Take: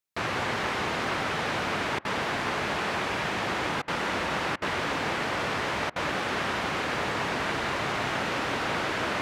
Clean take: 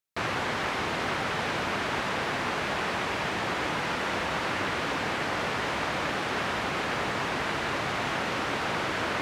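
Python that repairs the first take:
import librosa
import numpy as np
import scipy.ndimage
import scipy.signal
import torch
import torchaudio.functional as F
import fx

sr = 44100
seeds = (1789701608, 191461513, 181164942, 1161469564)

y = fx.fix_interpolate(x, sr, at_s=(1.99, 3.82, 4.56, 5.9), length_ms=58.0)
y = fx.fix_echo_inverse(y, sr, delay_ms=181, level_db=-8.5)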